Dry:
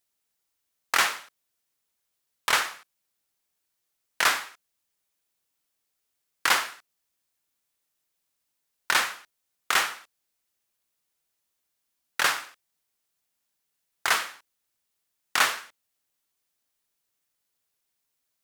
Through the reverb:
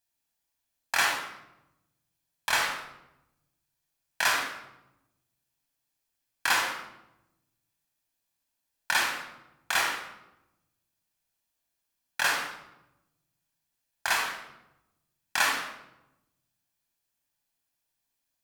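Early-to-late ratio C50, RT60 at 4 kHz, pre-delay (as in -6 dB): 4.5 dB, 0.65 s, 25 ms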